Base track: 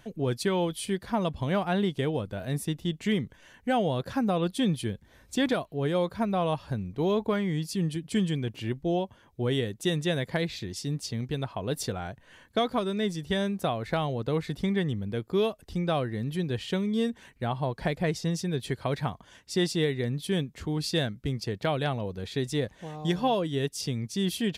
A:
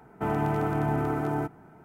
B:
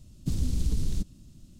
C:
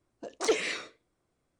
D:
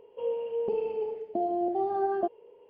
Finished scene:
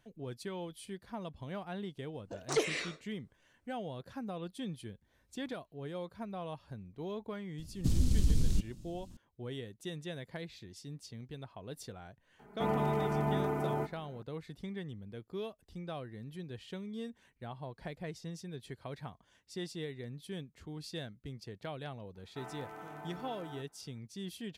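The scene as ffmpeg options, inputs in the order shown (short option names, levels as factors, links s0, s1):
-filter_complex "[1:a]asplit=2[s0][s1];[0:a]volume=0.188[s2];[s0]aecho=1:1:4.9:0.88[s3];[s1]highpass=f=1100:p=1[s4];[3:a]atrim=end=1.59,asetpts=PTS-STARTPTS,volume=0.631,afade=t=in:d=0.004:c=hsin,afade=t=out:st=1.586:d=0.004:c=hsin,adelay=2080[s5];[2:a]atrim=end=1.59,asetpts=PTS-STARTPTS,volume=0.944,afade=t=in:d=0.004:c=hsin,afade=t=out:st=1.586:d=0.004:c=hsin,adelay=7580[s6];[s3]atrim=end=1.84,asetpts=PTS-STARTPTS,volume=0.473,afade=t=in:d=0.004:c=hsin,afade=t=out:st=1.836:d=0.004:c=hsin,adelay=12390[s7];[s4]atrim=end=1.84,asetpts=PTS-STARTPTS,volume=0.224,afade=t=in:d=0.004:c=hsin,afade=t=out:st=1.836:d=0.004:c=hsin,adelay=22150[s8];[s2][s5][s6][s7][s8]amix=inputs=5:normalize=0"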